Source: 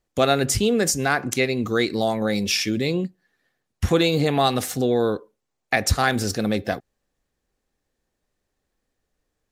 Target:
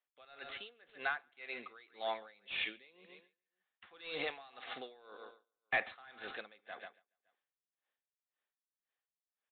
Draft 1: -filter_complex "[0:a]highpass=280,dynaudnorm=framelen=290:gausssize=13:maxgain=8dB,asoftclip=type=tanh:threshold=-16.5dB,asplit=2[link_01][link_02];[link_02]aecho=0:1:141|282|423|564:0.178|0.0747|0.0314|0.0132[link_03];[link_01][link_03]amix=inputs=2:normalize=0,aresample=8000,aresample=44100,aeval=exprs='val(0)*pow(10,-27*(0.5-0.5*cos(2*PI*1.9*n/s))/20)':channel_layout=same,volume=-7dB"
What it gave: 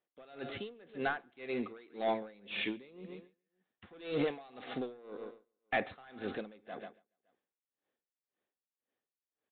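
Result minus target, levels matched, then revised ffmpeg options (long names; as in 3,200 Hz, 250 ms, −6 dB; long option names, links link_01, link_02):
250 Hz band +13.5 dB
-filter_complex "[0:a]highpass=1000,dynaudnorm=framelen=290:gausssize=13:maxgain=8dB,asoftclip=type=tanh:threshold=-16.5dB,asplit=2[link_01][link_02];[link_02]aecho=0:1:141|282|423|564:0.178|0.0747|0.0314|0.0132[link_03];[link_01][link_03]amix=inputs=2:normalize=0,aresample=8000,aresample=44100,aeval=exprs='val(0)*pow(10,-27*(0.5-0.5*cos(2*PI*1.9*n/s))/20)':channel_layout=same,volume=-7dB"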